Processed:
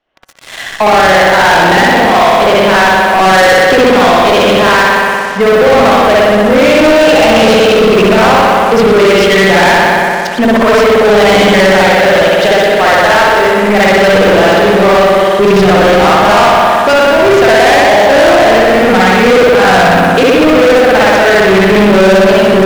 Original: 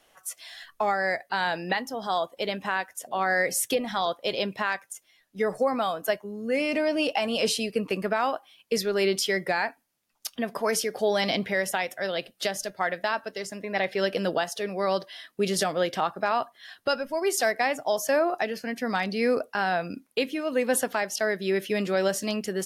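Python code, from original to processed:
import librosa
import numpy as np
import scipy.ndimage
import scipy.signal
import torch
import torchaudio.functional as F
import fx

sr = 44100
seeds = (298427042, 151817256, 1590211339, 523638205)

y = fx.air_absorb(x, sr, metres=220.0)
y = fx.rev_spring(y, sr, rt60_s=2.0, pass_ms=(58,), chirp_ms=55, drr_db=-7.5)
y = fx.leveller(y, sr, passes=5)
y = F.gain(torch.from_numpy(y), 3.0).numpy()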